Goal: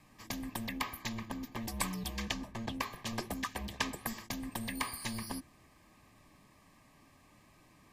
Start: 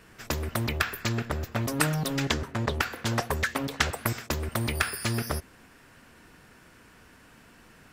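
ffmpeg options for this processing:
-filter_complex "[0:a]acrossover=split=990[s0][s1];[s0]asoftclip=type=tanh:threshold=0.0355[s2];[s2][s1]amix=inputs=2:normalize=0,afreqshift=-340,asuperstop=centerf=1400:order=12:qfactor=5,volume=0.422"

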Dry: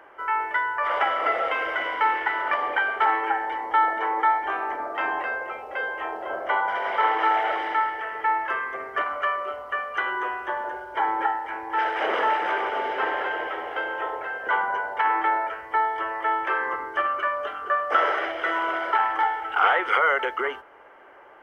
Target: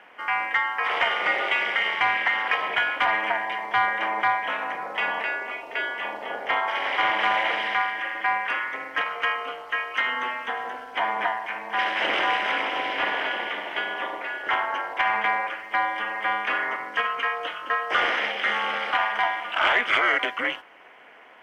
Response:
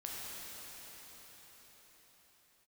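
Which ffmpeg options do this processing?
-filter_complex "[0:a]aexciter=amount=4.7:drive=7.2:freq=2000,aeval=exprs='val(0)*sin(2*PI*120*n/s)':c=same,asplit=2[s0][s1];[s1]highpass=f=720:p=1,volume=2.51,asoftclip=type=tanh:threshold=0.631[s2];[s0][s2]amix=inputs=2:normalize=0,lowpass=f=1400:p=1,volume=0.501"

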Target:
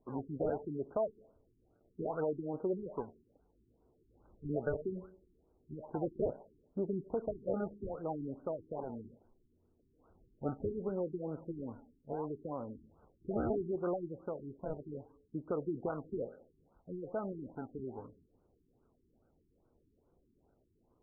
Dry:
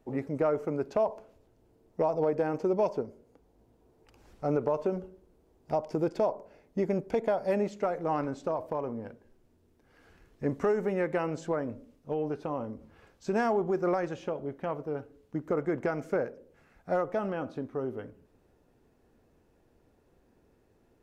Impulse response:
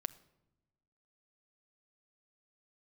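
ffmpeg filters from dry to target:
-af "acrusher=samples=24:mix=1:aa=0.000001:lfo=1:lforange=38.4:lforate=0.69,afftfilt=real='re*lt(b*sr/1024,400*pow(1600/400,0.5+0.5*sin(2*PI*2.4*pts/sr)))':imag='im*lt(b*sr/1024,400*pow(1600/400,0.5+0.5*sin(2*PI*2.4*pts/sr)))':win_size=1024:overlap=0.75,volume=0.473"

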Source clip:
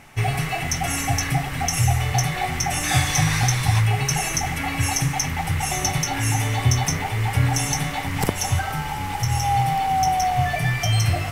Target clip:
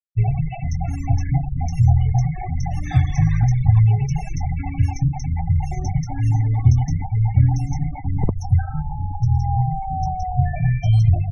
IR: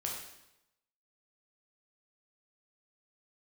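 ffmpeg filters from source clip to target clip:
-af "afftfilt=real='re*gte(hypot(re,im),0.126)':imag='im*gte(hypot(re,im),0.126)':win_size=1024:overlap=0.75,aemphasis=mode=reproduction:type=riaa,volume=0.447"

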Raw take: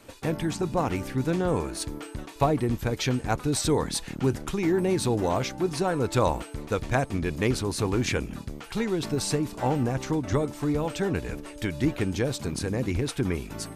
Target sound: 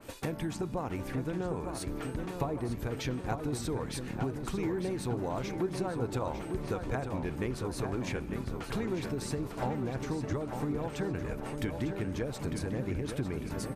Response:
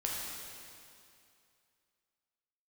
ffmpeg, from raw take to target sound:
-filter_complex "[0:a]highshelf=f=11000:g=8,acompressor=threshold=0.0251:ratio=6,asplit=2[s0][s1];[s1]adelay=901,lowpass=f=4000:p=1,volume=0.501,asplit=2[s2][s3];[s3]adelay=901,lowpass=f=4000:p=1,volume=0.54,asplit=2[s4][s5];[s5]adelay=901,lowpass=f=4000:p=1,volume=0.54,asplit=2[s6][s7];[s7]adelay=901,lowpass=f=4000:p=1,volume=0.54,asplit=2[s8][s9];[s9]adelay=901,lowpass=f=4000:p=1,volume=0.54,asplit=2[s10][s11];[s11]adelay=901,lowpass=f=4000:p=1,volume=0.54,asplit=2[s12][s13];[s13]adelay=901,lowpass=f=4000:p=1,volume=0.54[s14];[s0][s2][s4][s6][s8][s10][s12][s14]amix=inputs=8:normalize=0,asplit=2[s15][s16];[1:a]atrim=start_sample=2205,lowpass=4900[s17];[s16][s17]afir=irnorm=-1:irlink=0,volume=0.0944[s18];[s15][s18]amix=inputs=2:normalize=0,adynamicequalizer=threshold=0.002:dfrequency=2500:dqfactor=0.7:tfrequency=2500:tqfactor=0.7:attack=5:release=100:ratio=0.375:range=3.5:mode=cutabove:tftype=highshelf"

